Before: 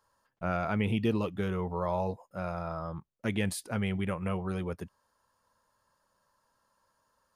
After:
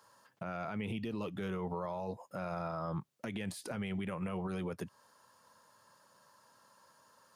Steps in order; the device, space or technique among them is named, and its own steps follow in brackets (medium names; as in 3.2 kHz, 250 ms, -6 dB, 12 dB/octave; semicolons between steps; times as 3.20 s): broadcast voice chain (high-pass 110 Hz 24 dB/octave; de-esser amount 90%; compression 4:1, threshold -42 dBFS, peak gain reduction 15.5 dB; peaking EQ 5.2 kHz +2.5 dB 2.2 oct; peak limiter -38 dBFS, peak gain reduction 10 dB); trim +8.5 dB